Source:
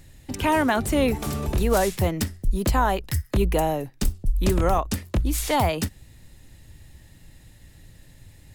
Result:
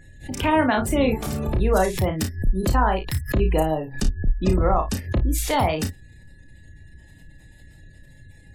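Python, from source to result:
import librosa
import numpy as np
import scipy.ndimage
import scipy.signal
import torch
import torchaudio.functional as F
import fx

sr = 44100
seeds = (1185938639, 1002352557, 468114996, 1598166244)

y = fx.spec_gate(x, sr, threshold_db=-30, keep='strong')
y = y + 10.0 ** (-54.0 / 20.0) * np.sin(2.0 * np.pi * 1700.0 * np.arange(len(y)) / sr)
y = fx.room_early_taps(y, sr, ms=(32, 54), db=(-6.0, -12.5))
y = fx.pre_swell(y, sr, db_per_s=150.0)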